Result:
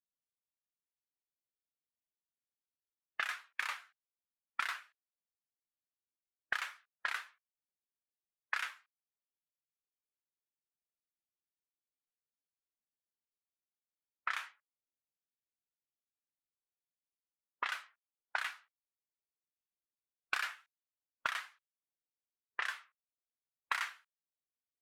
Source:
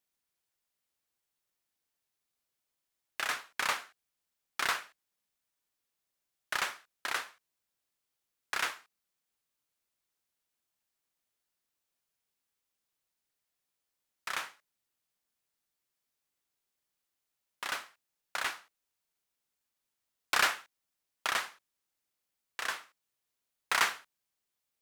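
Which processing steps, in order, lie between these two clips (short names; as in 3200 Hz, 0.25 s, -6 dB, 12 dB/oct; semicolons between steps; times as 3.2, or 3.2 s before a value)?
low-pass opened by the level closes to 430 Hz, open at -33 dBFS; tilt shelf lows -7 dB, about 1100 Hz; compressor 6:1, threshold -53 dBFS, peak gain reduction 31 dB; bell 5800 Hz -4 dB 2.1 oct; spectral expander 1.5:1; gain +17.5 dB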